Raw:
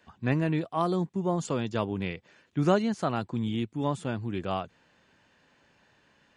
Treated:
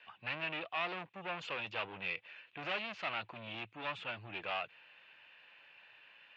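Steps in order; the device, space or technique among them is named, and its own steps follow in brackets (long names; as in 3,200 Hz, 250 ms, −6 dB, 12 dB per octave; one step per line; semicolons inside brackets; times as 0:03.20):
guitar amplifier (tube saturation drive 33 dB, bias 0.25; bass and treble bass −15 dB, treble −12 dB; loudspeaker in its box 100–3,600 Hz, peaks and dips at 110 Hz +9 dB, 250 Hz −8 dB, 390 Hz −5 dB, 2,600 Hz +10 dB)
first-order pre-emphasis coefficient 0.9
level +15.5 dB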